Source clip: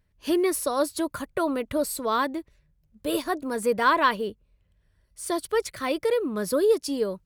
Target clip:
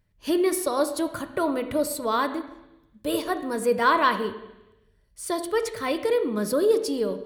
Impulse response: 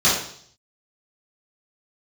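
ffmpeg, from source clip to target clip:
-filter_complex "[0:a]asplit=2[a][b];[1:a]atrim=start_sample=2205,asetrate=26901,aresample=44100,highshelf=f=5.5k:g=-7[c];[b][c]afir=irnorm=-1:irlink=0,volume=-31.5dB[d];[a][d]amix=inputs=2:normalize=0"

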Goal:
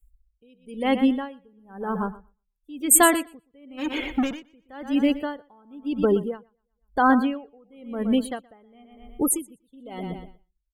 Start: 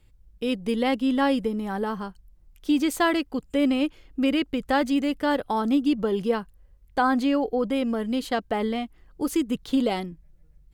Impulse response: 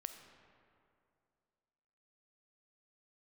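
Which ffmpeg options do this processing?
-filter_complex "[0:a]asplit=3[a][b][c];[a]afade=t=out:st=3.77:d=0.02[d];[b]asplit=2[e][f];[f]highpass=f=720:p=1,volume=34dB,asoftclip=type=tanh:threshold=-12.5dB[g];[e][g]amix=inputs=2:normalize=0,lowpass=f=2.5k:p=1,volume=-6dB,afade=t=in:st=3.77:d=0.02,afade=t=out:st=4.39:d=0.02[h];[c]afade=t=in:st=4.39:d=0.02[i];[d][h][i]amix=inputs=3:normalize=0,asplit=2[j][k];[k]acompressor=threshold=-37dB:ratio=6,volume=-1dB[l];[j][l]amix=inputs=2:normalize=0,afftdn=nr=35:nf=-32,aexciter=amount=12:drive=8.2:freq=7.2k,asplit=2[m][n];[n]aecho=0:1:121|242|363|484:0.224|0.0806|0.029|0.0104[o];[m][o]amix=inputs=2:normalize=0,aeval=exprs='val(0)*pow(10,-35*(0.5-0.5*cos(2*PI*0.98*n/s))/20)':c=same,volume=4dB"

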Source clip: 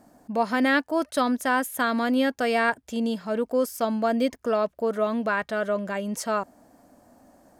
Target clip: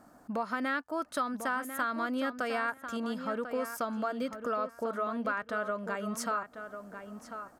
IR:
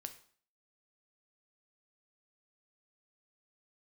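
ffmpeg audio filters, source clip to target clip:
-filter_complex "[0:a]equalizer=f=1.3k:w=2.7:g=12,acompressor=threshold=-29dB:ratio=3,asplit=2[a][b];[b]adelay=1045,lowpass=f=2.9k:p=1,volume=-9dB,asplit=2[c][d];[d]adelay=1045,lowpass=f=2.9k:p=1,volume=0.2,asplit=2[e][f];[f]adelay=1045,lowpass=f=2.9k:p=1,volume=0.2[g];[a][c][e][g]amix=inputs=4:normalize=0,volume=-3.5dB"

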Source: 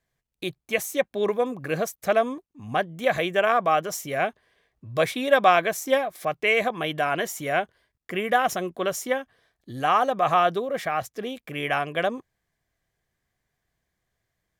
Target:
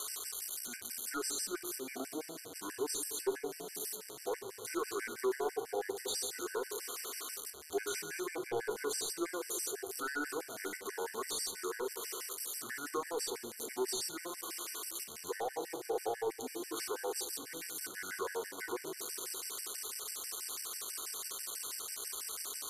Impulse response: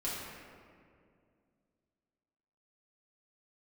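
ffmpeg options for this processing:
-filter_complex "[0:a]aeval=exprs='val(0)+0.5*0.0376*sgn(val(0))':c=same,aderivative,volume=29.5dB,asoftclip=hard,volume=-29.5dB,equalizer=f=250:t=o:w=0.67:g=-7,equalizer=f=630:t=o:w=0.67:g=10,equalizer=f=4k:t=o:w=0.67:g=-5,acrossover=split=500[a][b];[b]acompressor=threshold=-36dB:ratio=4[c];[a][c]amix=inputs=2:normalize=0,bandreject=f=50:t=h:w=6,bandreject=f=100:t=h:w=6,bandreject=f=150:t=h:w=6,bandreject=f=200:t=h:w=6,asetrate=28356,aresample=44100,asplit=2[d][e];[1:a]atrim=start_sample=2205[f];[e][f]afir=irnorm=-1:irlink=0,volume=-7.5dB[g];[d][g]amix=inputs=2:normalize=0,afftfilt=real='re*gt(sin(2*PI*6.1*pts/sr)*(1-2*mod(floor(b*sr/1024/1500),2)),0)':imag='im*gt(sin(2*PI*6.1*pts/sr)*(1-2*mod(floor(b*sr/1024/1500),2)),0)':win_size=1024:overlap=0.75"

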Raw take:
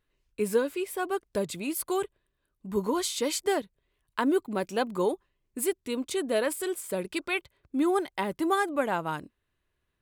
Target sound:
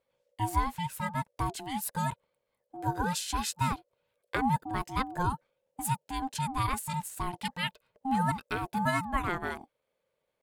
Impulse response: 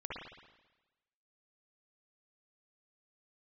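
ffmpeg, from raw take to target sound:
-af "atempo=0.96,aeval=exprs='val(0)*sin(2*PI*530*n/s)':c=same"

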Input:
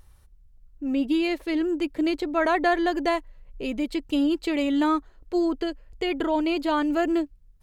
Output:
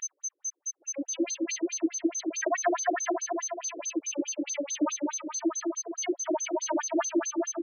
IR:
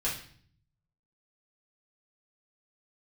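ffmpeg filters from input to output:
-filter_complex "[0:a]asplit=2[a][b];[b]aecho=0:1:240|432|585.6|708.5|806.8:0.631|0.398|0.251|0.158|0.1[c];[a][c]amix=inputs=2:normalize=0,aeval=exprs='val(0)+0.0562*sin(2*PI*6200*n/s)':c=same,acrossover=split=5600[d][e];[e]acompressor=threshold=-37dB:ratio=4:attack=1:release=60[f];[d][f]amix=inputs=2:normalize=0,afftfilt=real='re*between(b*sr/1024,370*pow(5800/370,0.5+0.5*sin(2*PI*4.7*pts/sr))/1.41,370*pow(5800/370,0.5+0.5*sin(2*PI*4.7*pts/sr))*1.41)':imag='im*between(b*sr/1024,370*pow(5800/370,0.5+0.5*sin(2*PI*4.7*pts/sr))/1.41,370*pow(5800/370,0.5+0.5*sin(2*PI*4.7*pts/sr))*1.41)':win_size=1024:overlap=0.75"

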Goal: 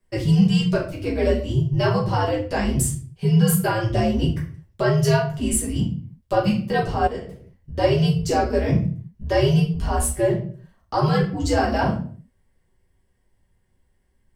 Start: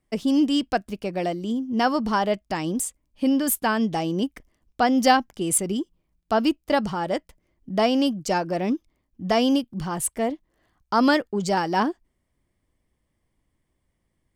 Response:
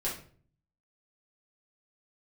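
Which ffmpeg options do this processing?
-filter_complex "[0:a]alimiter=limit=-16dB:level=0:latency=1:release=261,afreqshift=-110[a];[1:a]atrim=start_sample=2205,afade=t=out:st=0.43:d=0.01,atrim=end_sample=19404[b];[a][b]afir=irnorm=-1:irlink=0,asettb=1/sr,asplit=3[c][d][e];[c]atrim=end=7.074[f];[d]atrim=start=7.07:end=7.78,asetpts=PTS-STARTPTS,afade=t=in:d=0.004:c=qsin,afade=t=out:st=0.706:d=0.004:c=qsin,acompressor=threshold=-32dB:ratio=2.5[g];[e]atrim=start=7.776[h];[f][g]acrossfade=d=0.004:c1=hsin:c2=qsin[i];[i][h]acrossfade=d=0.004:c1=qsin:c2=hsin"

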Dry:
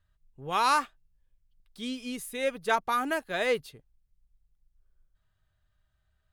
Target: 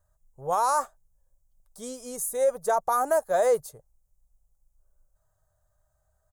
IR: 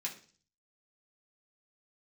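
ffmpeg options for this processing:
-af "firequalizer=gain_entry='entry(130,0);entry(270,-9);entry(560,12);entry(2600,-19);entry(6700,11);entry(13000,9)':delay=0.05:min_phase=1,alimiter=limit=-16dB:level=0:latency=1:release=24,volume=1dB"

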